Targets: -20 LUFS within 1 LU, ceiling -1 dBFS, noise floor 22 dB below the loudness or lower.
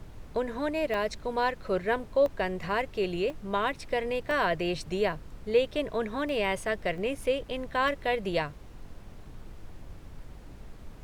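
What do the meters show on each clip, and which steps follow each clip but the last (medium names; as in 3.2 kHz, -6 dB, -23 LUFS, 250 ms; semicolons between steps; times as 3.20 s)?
dropouts 7; longest dropout 1.1 ms; noise floor -47 dBFS; noise floor target -52 dBFS; loudness -30.0 LUFS; peak level -13.5 dBFS; loudness target -20.0 LUFS
-> interpolate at 0.94/2.26/3.30/4.31/6.29/6.98/7.88 s, 1.1 ms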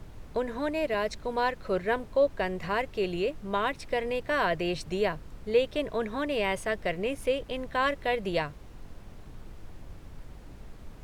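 dropouts 0; noise floor -47 dBFS; noise floor target -52 dBFS
-> noise print and reduce 6 dB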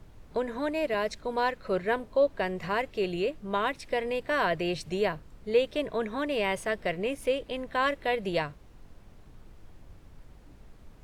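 noise floor -53 dBFS; loudness -30.0 LUFS; peak level -13.5 dBFS; loudness target -20.0 LUFS
-> trim +10 dB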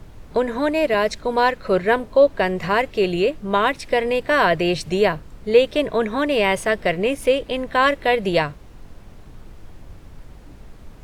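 loudness -20.0 LUFS; peak level -3.5 dBFS; noise floor -43 dBFS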